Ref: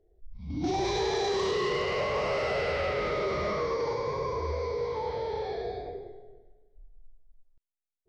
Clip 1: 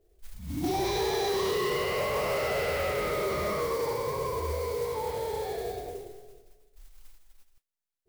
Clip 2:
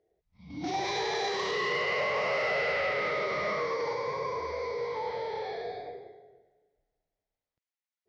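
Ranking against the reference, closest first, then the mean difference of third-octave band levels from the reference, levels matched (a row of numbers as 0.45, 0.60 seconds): 2, 1; 3.0, 5.5 decibels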